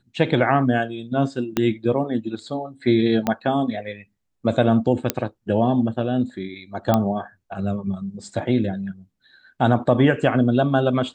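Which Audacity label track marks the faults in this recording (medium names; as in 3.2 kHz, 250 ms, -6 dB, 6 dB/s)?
1.570000	1.570000	pop -7 dBFS
3.270000	3.270000	pop -8 dBFS
5.100000	5.100000	pop -2 dBFS
6.940000	6.940000	pop -6 dBFS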